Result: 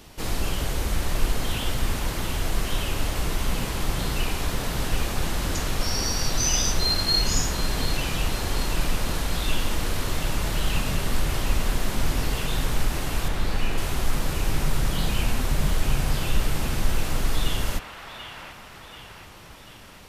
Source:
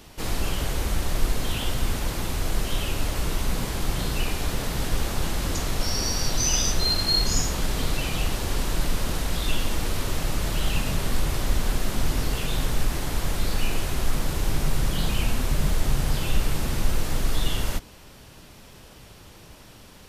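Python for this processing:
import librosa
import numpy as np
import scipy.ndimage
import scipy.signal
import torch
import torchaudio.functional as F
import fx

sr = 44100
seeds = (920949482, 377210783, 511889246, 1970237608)

y = fx.high_shelf(x, sr, hz=4900.0, db=-8.5, at=(13.28, 13.78))
y = fx.echo_wet_bandpass(y, sr, ms=736, feedback_pct=54, hz=1500.0, wet_db=-4.0)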